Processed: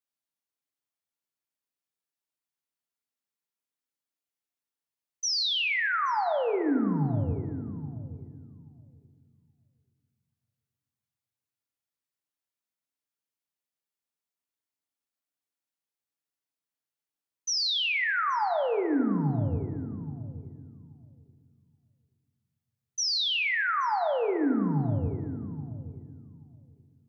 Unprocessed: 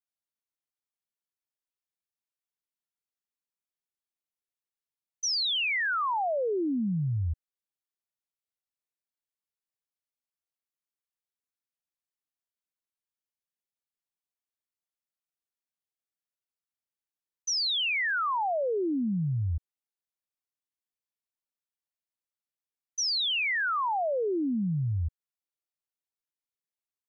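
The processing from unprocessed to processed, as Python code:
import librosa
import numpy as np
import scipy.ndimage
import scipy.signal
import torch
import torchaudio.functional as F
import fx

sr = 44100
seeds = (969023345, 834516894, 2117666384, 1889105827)

y = scipy.signal.sosfilt(scipy.signal.butter(2, 96.0, 'highpass', fs=sr, output='sos'), x)
y = fx.echo_filtered(y, sr, ms=827, feedback_pct=15, hz=1000.0, wet_db=-12.0)
y = fx.rev_fdn(y, sr, rt60_s=1.8, lf_ratio=1.6, hf_ratio=0.35, size_ms=21.0, drr_db=5.5)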